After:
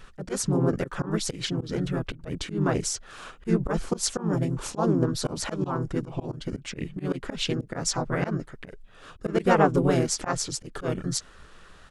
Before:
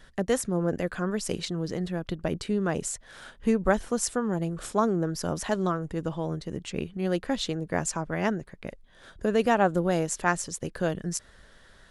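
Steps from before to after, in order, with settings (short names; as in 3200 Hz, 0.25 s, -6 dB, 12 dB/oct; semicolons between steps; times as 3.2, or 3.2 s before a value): harmoniser -5 st -2 dB, -4 st -1 dB; auto swell 0.125 s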